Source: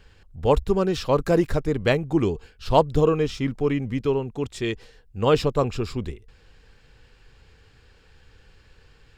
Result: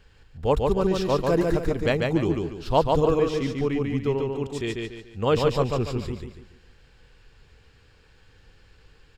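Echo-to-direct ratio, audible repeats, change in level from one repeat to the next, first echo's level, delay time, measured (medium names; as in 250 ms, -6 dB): -2.5 dB, 4, -9.0 dB, -3.0 dB, 144 ms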